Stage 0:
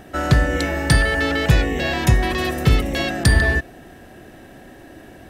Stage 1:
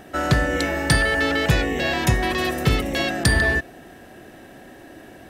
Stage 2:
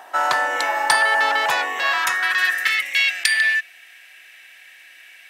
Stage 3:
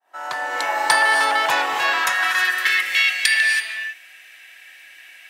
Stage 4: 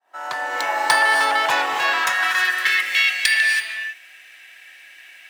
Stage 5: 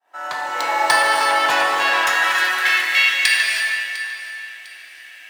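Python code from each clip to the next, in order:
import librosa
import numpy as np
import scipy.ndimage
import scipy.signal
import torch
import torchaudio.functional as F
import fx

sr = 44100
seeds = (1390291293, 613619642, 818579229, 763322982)

y1 = fx.low_shelf(x, sr, hz=120.0, db=-8.0)
y2 = fx.filter_sweep_highpass(y1, sr, from_hz=910.0, to_hz=2300.0, start_s=1.55, end_s=3.02, q=4.4)
y2 = y2 * librosa.db_to_amplitude(1.0)
y3 = fx.fade_in_head(y2, sr, length_s=0.78)
y3 = fx.rev_gated(y3, sr, seeds[0], gate_ms=350, shape='rising', drr_db=5.0)
y4 = scipy.signal.medfilt(y3, 3)
y5 = fx.echo_feedback(y4, sr, ms=702, feedback_pct=35, wet_db=-16.5)
y5 = fx.rev_plate(y5, sr, seeds[1], rt60_s=2.3, hf_ratio=0.75, predelay_ms=0, drr_db=1.5)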